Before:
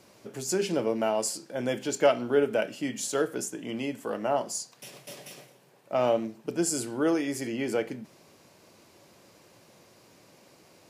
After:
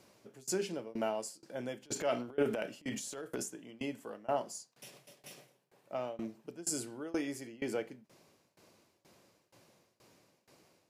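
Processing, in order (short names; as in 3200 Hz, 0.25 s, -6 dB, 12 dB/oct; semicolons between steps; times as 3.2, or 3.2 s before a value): 1.82–3.46 transient shaper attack -8 dB, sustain +8 dB; tremolo saw down 2.1 Hz, depth 95%; gain -5 dB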